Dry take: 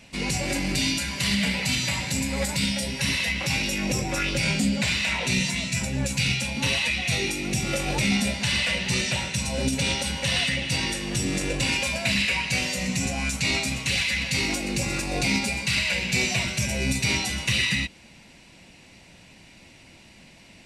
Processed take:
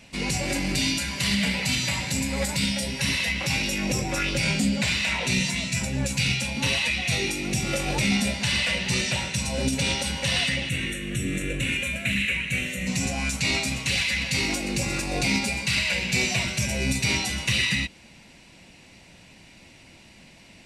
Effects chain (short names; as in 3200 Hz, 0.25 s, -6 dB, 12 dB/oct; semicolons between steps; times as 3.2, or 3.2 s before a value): 10.69–12.87 fixed phaser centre 2100 Hz, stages 4